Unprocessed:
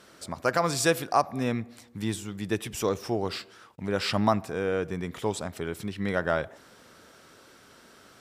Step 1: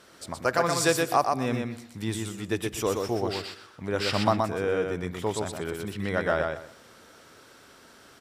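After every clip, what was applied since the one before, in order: peaking EQ 190 Hz -3.5 dB 0.6 oct; feedback delay 123 ms, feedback 21%, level -4 dB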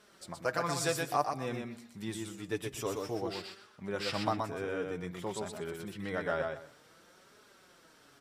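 flange 0.54 Hz, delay 4.7 ms, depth 2.9 ms, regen +30%; trim -4 dB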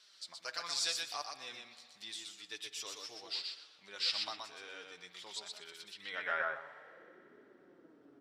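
band-pass sweep 4.3 kHz -> 320 Hz, 5.98–7.21 s; spring tank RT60 2.9 s, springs 58 ms, chirp 65 ms, DRR 15 dB; trim +8 dB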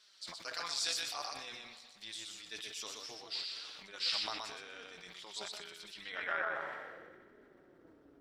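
AM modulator 220 Hz, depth 45%; decay stretcher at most 32 dB/s; trim +1.5 dB

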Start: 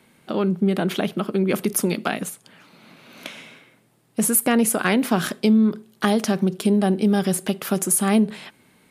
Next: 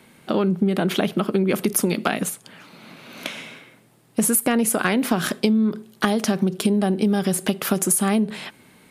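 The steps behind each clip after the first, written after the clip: compression, threshold -21 dBFS, peak gain reduction 8 dB; trim +5 dB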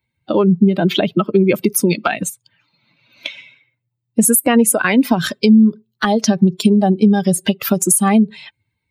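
expander on every frequency bin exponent 2; loudness maximiser +12.5 dB; trim -1 dB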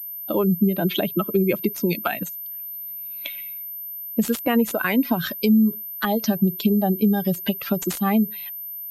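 class-D stage that switches slowly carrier 13 kHz; trim -7 dB

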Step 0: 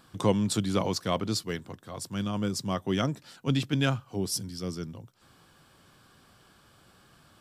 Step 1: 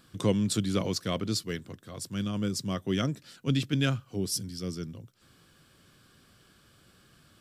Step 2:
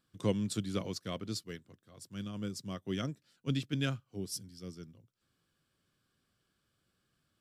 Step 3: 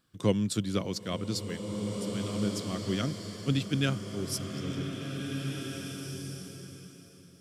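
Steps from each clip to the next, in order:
peaking EQ 860 Hz -10 dB 0.84 oct
upward expansion 1.5:1, over -49 dBFS; trim -4.5 dB
swelling reverb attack 1910 ms, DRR 3.5 dB; trim +5 dB

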